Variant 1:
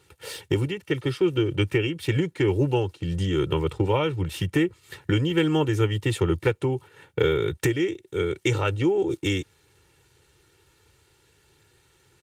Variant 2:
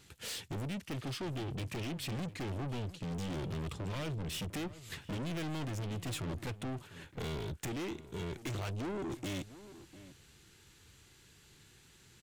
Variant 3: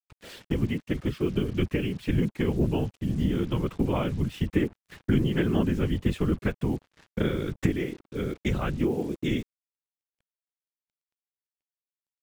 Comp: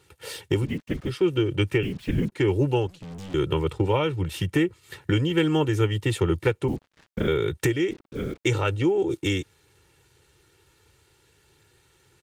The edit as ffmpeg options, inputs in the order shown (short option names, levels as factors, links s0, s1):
-filter_complex "[2:a]asplit=4[s0][s1][s2][s3];[0:a]asplit=6[s4][s5][s6][s7][s8][s9];[s4]atrim=end=0.71[s10];[s0]atrim=start=0.61:end=1.14[s11];[s5]atrim=start=1.04:end=1.832[s12];[s1]atrim=start=1.828:end=2.322[s13];[s6]atrim=start=2.318:end=2.872[s14];[1:a]atrim=start=2.868:end=3.342[s15];[s7]atrim=start=3.338:end=6.682[s16];[s2]atrim=start=6.678:end=7.282[s17];[s8]atrim=start=7.278:end=7.912[s18];[s3]atrim=start=7.908:end=8.452[s19];[s9]atrim=start=8.448[s20];[s10][s11]acrossfade=d=0.1:c1=tri:c2=tri[s21];[s21][s12]acrossfade=d=0.1:c1=tri:c2=tri[s22];[s22][s13]acrossfade=d=0.004:c1=hsin:c2=hsin[s23];[s23][s14]acrossfade=d=0.004:c1=hsin:c2=hsin[s24];[s24][s15]acrossfade=d=0.004:c1=hsin:c2=hsin[s25];[s25][s16]acrossfade=d=0.004:c1=hsin:c2=hsin[s26];[s26][s17]acrossfade=d=0.004:c1=hsin:c2=hsin[s27];[s27][s18]acrossfade=d=0.004:c1=hsin:c2=hsin[s28];[s28][s19]acrossfade=d=0.004:c1=hsin:c2=hsin[s29];[s29][s20]acrossfade=d=0.004:c1=hsin:c2=hsin"